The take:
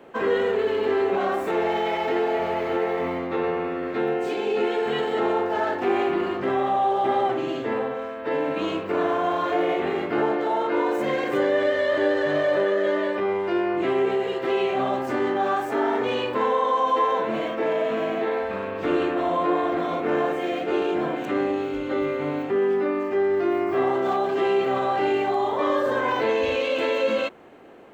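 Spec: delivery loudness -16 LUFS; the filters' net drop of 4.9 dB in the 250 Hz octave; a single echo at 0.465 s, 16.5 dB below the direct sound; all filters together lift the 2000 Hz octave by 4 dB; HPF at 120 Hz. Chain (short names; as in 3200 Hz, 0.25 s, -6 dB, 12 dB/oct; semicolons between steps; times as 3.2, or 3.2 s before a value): HPF 120 Hz; bell 250 Hz -8 dB; bell 2000 Hz +5 dB; echo 0.465 s -16.5 dB; gain +8.5 dB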